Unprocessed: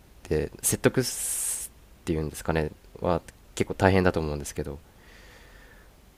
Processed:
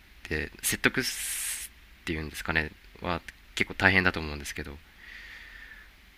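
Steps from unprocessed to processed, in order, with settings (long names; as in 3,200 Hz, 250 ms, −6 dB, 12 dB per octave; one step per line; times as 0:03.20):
graphic EQ with 10 bands 125 Hz −10 dB, 500 Hz −11 dB, 1,000 Hz −3 dB, 2,000 Hz +11 dB, 4,000 Hz +5 dB, 8,000 Hz −7 dB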